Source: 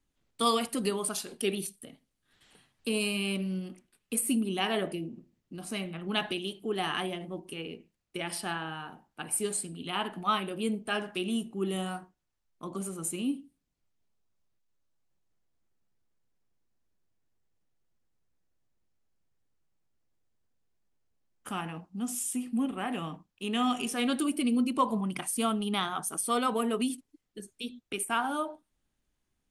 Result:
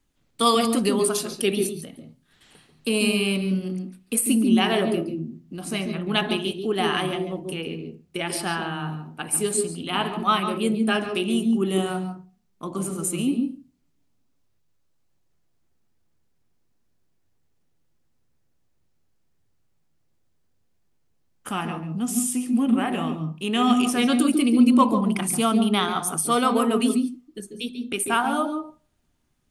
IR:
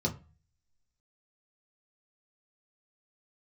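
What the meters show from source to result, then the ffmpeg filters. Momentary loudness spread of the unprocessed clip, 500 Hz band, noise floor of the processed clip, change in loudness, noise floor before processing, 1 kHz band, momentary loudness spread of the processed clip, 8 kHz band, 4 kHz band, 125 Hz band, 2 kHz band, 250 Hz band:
14 LU, +9.0 dB, -67 dBFS, +8.5 dB, -80 dBFS, +7.5 dB, 13 LU, +7.0 dB, +7.0 dB, +9.5 dB, +7.0 dB, +10.5 dB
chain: -filter_complex "[0:a]asplit=2[a][b];[1:a]atrim=start_sample=2205,adelay=140[c];[b][c]afir=irnorm=-1:irlink=0,volume=-15dB[d];[a][d]amix=inputs=2:normalize=0,volume=7dB"

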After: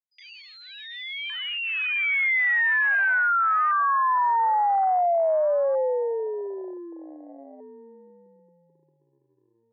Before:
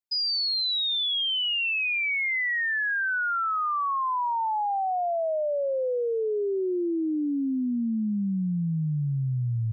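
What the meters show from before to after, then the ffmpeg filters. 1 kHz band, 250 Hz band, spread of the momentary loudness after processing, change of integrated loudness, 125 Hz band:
+5.5 dB, -17.5 dB, 16 LU, +4.0 dB, under -40 dB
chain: -af "afwtdn=0.0398,asuperpass=centerf=1100:order=8:qfactor=0.57,volume=5.5dB"

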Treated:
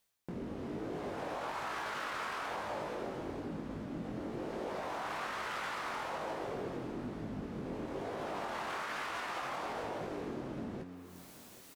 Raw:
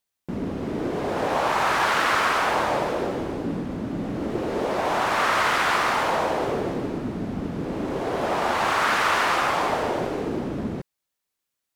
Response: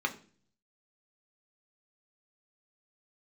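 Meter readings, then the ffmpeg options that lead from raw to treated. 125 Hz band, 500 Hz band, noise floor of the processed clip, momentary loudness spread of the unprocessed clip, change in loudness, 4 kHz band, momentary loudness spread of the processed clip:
-13.0 dB, -14.5 dB, -54 dBFS, 10 LU, -16.0 dB, -16.5 dB, 4 LU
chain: -filter_complex "[0:a]bandreject=f=89.59:t=h:w=4,bandreject=f=179.18:t=h:w=4,bandreject=f=268.77:t=h:w=4,bandreject=f=358.36:t=h:w=4,bandreject=f=447.95:t=h:w=4,areverse,acompressor=mode=upward:threshold=-32dB:ratio=2.5,areverse,alimiter=limit=-16.5dB:level=0:latency=1:release=21,acompressor=threshold=-42dB:ratio=2.5,flanger=delay=18.5:depth=4.9:speed=1.1,asplit=2[a][b];[b]aecho=0:1:781|1562|2343|3124:0.126|0.0592|0.0278|0.0131[c];[a][c]amix=inputs=2:normalize=0,volume=1.5dB"

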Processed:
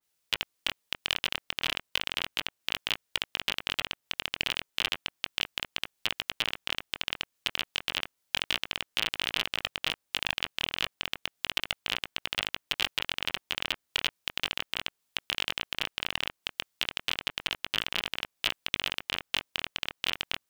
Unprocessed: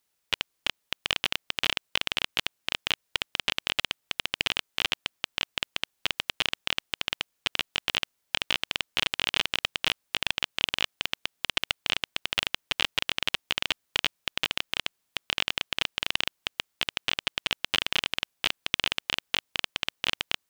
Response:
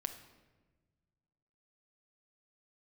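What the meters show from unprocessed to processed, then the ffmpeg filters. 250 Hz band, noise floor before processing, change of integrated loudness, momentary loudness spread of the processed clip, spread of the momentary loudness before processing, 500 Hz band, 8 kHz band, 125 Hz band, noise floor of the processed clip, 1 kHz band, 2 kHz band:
-3.5 dB, -77 dBFS, -2.5 dB, 4 LU, 4 LU, -3.5 dB, -2.5 dB, -3.0 dB, -80 dBFS, -3.5 dB, -3.0 dB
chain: -filter_complex "[0:a]acrossover=split=2400[a][b];[a]flanger=delay=18:depth=5.9:speed=0.33[c];[b]acrusher=bits=4:mode=log:mix=0:aa=0.000001[d];[c][d]amix=inputs=2:normalize=0,adynamicequalizer=threshold=0.01:dfrequency=2200:dqfactor=0.7:tfrequency=2200:tqfactor=0.7:attack=5:release=100:ratio=0.375:range=2:mode=cutabove:tftype=highshelf"

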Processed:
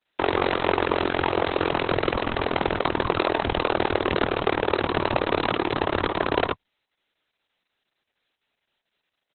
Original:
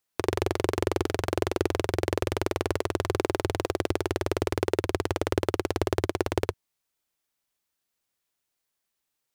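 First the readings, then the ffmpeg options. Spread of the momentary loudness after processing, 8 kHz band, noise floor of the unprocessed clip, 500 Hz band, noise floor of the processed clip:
2 LU, under -40 dB, -82 dBFS, +3.5 dB, -82 dBFS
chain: -filter_complex "[0:a]highpass=f=180:p=1,acrossover=split=680|6300[a][b][c];[a]alimiter=level_in=1dB:limit=-24dB:level=0:latency=1:release=79,volume=-1dB[d];[d][b][c]amix=inputs=3:normalize=0,asuperstop=centerf=1100:order=12:qfactor=5.6,asplit=2[e][f];[f]adelay=22,volume=-2.5dB[g];[e][g]amix=inputs=2:normalize=0,volume=8.5dB" -ar 48000 -c:a libopus -b:a 6k

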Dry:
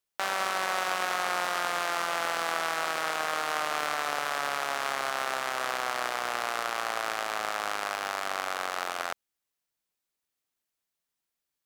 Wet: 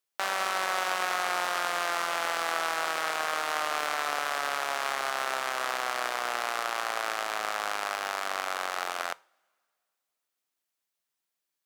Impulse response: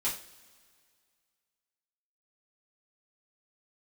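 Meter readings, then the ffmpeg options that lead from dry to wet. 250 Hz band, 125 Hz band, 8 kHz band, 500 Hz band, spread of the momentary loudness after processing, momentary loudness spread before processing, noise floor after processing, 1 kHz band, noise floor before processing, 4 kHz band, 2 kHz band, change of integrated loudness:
-2.0 dB, n/a, +0.5 dB, -0.5 dB, 3 LU, 3 LU, -85 dBFS, 0.0 dB, under -85 dBFS, +0.5 dB, +0.5 dB, 0.0 dB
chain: -filter_complex "[0:a]lowshelf=f=170:g=-10.5,asplit=2[a][b];[1:a]atrim=start_sample=2205[c];[b][c]afir=irnorm=-1:irlink=0,volume=-23dB[d];[a][d]amix=inputs=2:normalize=0"

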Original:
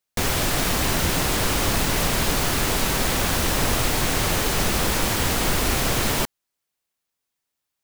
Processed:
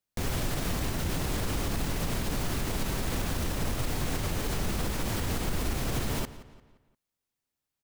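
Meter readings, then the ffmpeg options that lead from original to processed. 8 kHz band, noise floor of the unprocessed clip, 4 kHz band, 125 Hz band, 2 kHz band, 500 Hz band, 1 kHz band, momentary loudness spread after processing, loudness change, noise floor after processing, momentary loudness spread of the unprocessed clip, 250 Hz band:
-13.0 dB, -82 dBFS, -13.0 dB, -5.5 dB, -13.0 dB, -9.5 dB, -12.0 dB, 1 LU, -10.5 dB, under -85 dBFS, 0 LU, -7.0 dB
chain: -filter_complex "[0:a]lowshelf=f=380:g=9,alimiter=limit=-14.5dB:level=0:latency=1:release=123,asplit=2[a][b];[b]adelay=174,lowpass=f=4.8k:p=1,volume=-15.5dB,asplit=2[c][d];[d]adelay=174,lowpass=f=4.8k:p=1,volume=0.43,asplit=2[e][f];[f]adelay=174,lowpass=f=4.8k:p=1,volume=0.43,asplit=2[g][h];[h]adelay=174,lowpass=f=4.8k:p=1,volume=0.43[i];[c][e][g][i]amix=inputs=4:normalize=0[j];[a][j]amix=inputs=2:normalize=0,volume=-6.5dB"

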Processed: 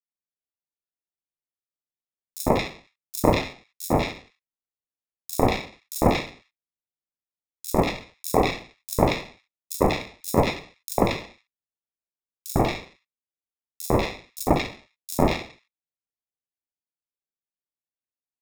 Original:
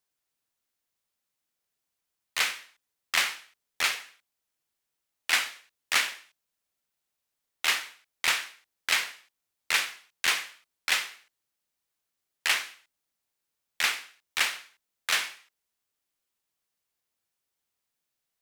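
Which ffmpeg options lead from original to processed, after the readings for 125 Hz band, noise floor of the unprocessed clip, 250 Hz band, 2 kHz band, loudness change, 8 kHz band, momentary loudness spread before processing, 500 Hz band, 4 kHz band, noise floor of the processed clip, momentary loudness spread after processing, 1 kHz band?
n/a, -84 dBFS, +30.5 dB, -6.0 dB, +2.5 dB, -2.5 dB, 13 LU, +24.0 dB, -6.0 dB, under -85 dBFS, 14 LU, +10.5 dB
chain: -filter_complex "[0:a]agate=range=-33dB:threshold=-51dB:ratio=3:detection=peak,acrusher=samples=29:mix=1:aa=0.000001,acrossover=split=1600|5300[a][b][c];[a]adelay=100[d];[b]adelay=190[e];[d][e][c]amix=inputs=3:normalize=0,volume=6.5dB"

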